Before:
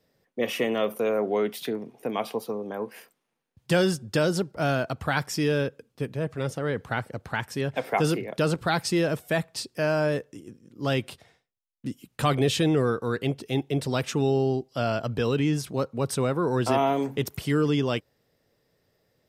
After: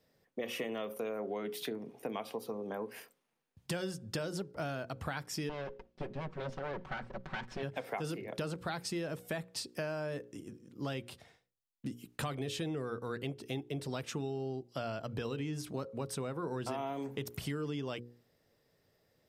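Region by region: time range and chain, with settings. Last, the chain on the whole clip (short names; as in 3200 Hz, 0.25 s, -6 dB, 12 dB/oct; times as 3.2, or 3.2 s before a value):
5.49–7.63 minimum comb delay 5.3 ms + air absorption 150 m
whole clip: notches 60/120/180/240/300/360/420/480/540 Hz; compressor 5:1, threshold -33 dBFS; gain -2.5 dB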